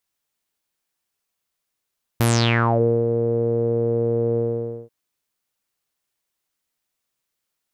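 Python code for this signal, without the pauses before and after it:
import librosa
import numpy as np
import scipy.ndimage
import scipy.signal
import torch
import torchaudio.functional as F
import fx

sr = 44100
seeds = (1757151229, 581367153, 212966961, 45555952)

y = fx.sub_voice(sr, note=46, wave='saw', cutoff_hz=470.0, q=7.5, env_oct=5.0, env_s=0.6, attack_ms=3.2, decay_s=0.85, sustain_db=-9.0, release_s=0.52, note_s=2.17, slope=12)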